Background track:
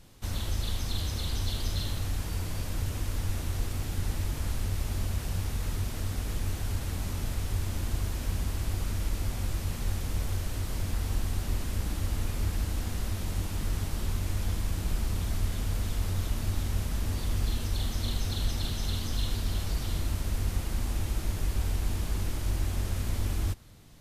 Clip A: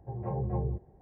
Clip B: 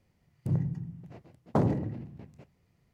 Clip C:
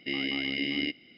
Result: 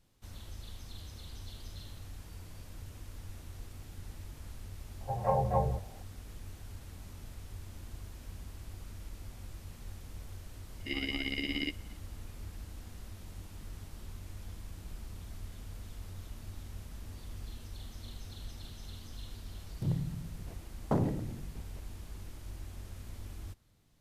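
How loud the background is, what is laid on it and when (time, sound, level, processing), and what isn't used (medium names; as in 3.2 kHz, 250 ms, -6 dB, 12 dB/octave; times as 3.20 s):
background track -15 dB
5.01 s: add A -1 dB + FFT filter 200 Hz 0 dB, 340 Hz -12 dB, 540 Hz +12 dB
10.80 s: add C -2 dB + tremolo 17 Hz, depth 64%
19.36 s: add B -4 dB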